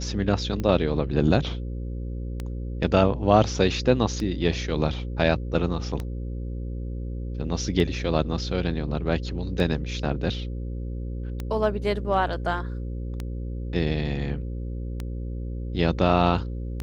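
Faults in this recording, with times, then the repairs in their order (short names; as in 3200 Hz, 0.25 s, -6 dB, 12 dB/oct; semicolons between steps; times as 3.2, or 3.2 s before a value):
buzz 60 Hz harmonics 9 -31 dBFS
tick 33 1/3 rpm -17 dBFS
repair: de-click; de-hum 60 Hz, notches 9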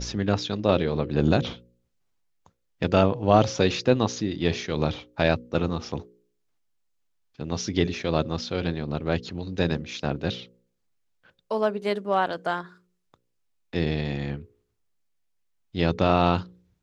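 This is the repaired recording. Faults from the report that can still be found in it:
none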